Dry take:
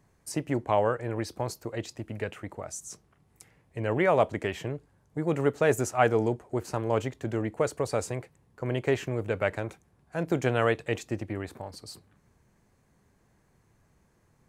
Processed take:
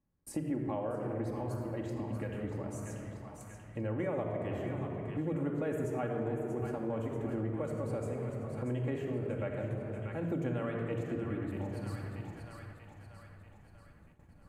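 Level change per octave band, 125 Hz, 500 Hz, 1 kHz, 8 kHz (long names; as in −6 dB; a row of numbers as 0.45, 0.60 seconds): −3.0, −8.5, −12.0, −14.0 decibels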